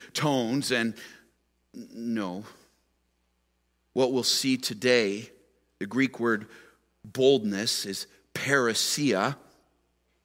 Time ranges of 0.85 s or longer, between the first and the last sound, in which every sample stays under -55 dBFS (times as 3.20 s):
2.67–3.96 s